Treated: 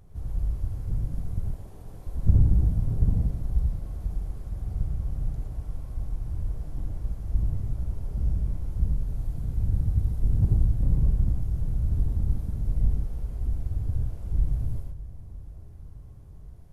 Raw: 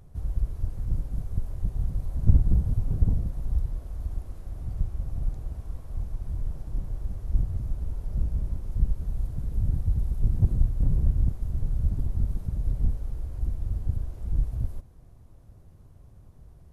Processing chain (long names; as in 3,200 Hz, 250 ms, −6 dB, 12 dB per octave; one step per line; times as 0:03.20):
0:01.55–0:02.07: Chebyshev high-pass filter 420 Hz, order 2
bucket-brigade delay 480 ms, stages 2,048, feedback 67%, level −15.5 dB
reverb whose tail is shaped and stops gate 140 ms rising, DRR 0.5 dB
level −2 dB